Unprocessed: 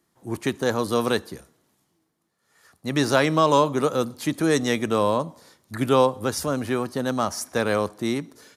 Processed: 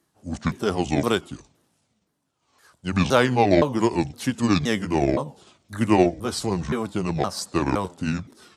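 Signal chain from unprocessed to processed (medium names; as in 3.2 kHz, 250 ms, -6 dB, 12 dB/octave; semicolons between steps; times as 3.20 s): sawtooth pitch modulation -9.5 st, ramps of 517 ms; Chebyshev shaper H 7 -35 dB, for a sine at -6 dBFS; trim +2 dB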